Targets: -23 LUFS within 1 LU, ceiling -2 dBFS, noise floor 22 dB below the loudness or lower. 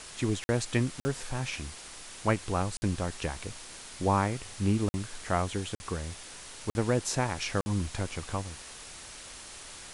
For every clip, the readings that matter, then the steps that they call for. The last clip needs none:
dropouts 7; longest dropout 50 ms; noise floor -46 dBFS; noise floor target -54 dBFS; loudness -32.0 LUFS; peak level -12.0 dBFS; loudness target -23.0 LUFS
-> interpolate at 0.44/1.00/2.77/4.89/5.75/6.70/7.61 s, 50 ms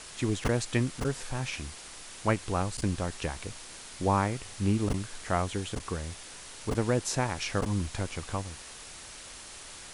dropouts 0; noise floor -46 dBFS; noise floor target -54 dBFS
-> noise reduction 8 dB, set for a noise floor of -46 dBFS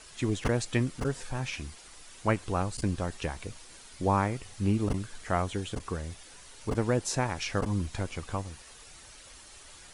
noise floor -51 dBFS; noise floor target -54 dBFS
-> noise reduction 6 dB, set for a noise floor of -51 dBFS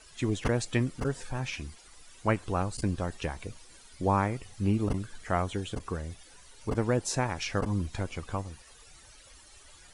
noise floor -55 dBFS; loudness -31.5 LUFS; peak level -12.0 dBFS; loudness target -23.0 LUFS
-> trim +8.5 dB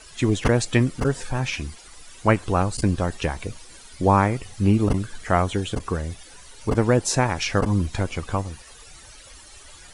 loudness -23.0 LUFS; peak level -3.5 dBFS; noise floor -46 dBFS

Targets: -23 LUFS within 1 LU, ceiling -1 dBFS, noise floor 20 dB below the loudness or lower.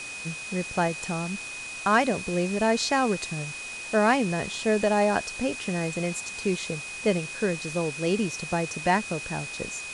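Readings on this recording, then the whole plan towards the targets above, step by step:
steady tone 2.5 kHz; tone level -36 dBFS; noise floor -38 dBFS; noise floor target -47 dBFS; loudness -27.0 LUFS; peak level -9.0 dBFS; loudness target -23.0 LUFS
-> band-stop 2.5 kHz, Q 30; noise reduction 9 dB, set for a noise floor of -38 dBFS; trim +4 dB

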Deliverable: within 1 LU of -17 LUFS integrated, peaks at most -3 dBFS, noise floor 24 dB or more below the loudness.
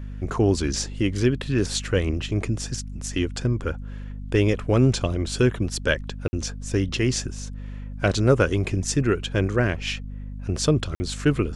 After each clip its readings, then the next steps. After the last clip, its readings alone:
dropouts 2; longest dropout 50 ms; hum 50 Hz; highest harmonic 250 Hz; hum level -31 dBFS; loudness -24.0 LUFS; peak level -5.5 dBFS; loudness target -17.0 LUFS
-> interpolate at 6.28/10.95 s, 50 ms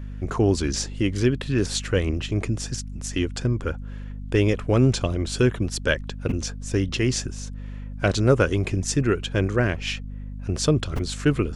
dropouts 0; hum 50 Hz; highest harmonic 250 Hz; hum level -31 dBFS
-> de-hum 50 Hz, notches 5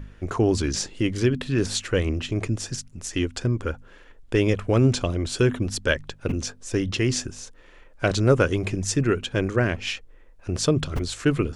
hum not found; loudness -24.5 LUFS; peak level -6.0 dBFS; loudness target -17.0 LUFS
-> trim +7.5 dB; peak limiter -3 dBFS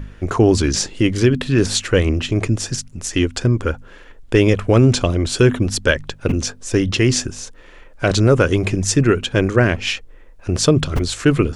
loudness -17.5 LUFS; peak level -3.0 dBFS; noise floor -43 dBFS

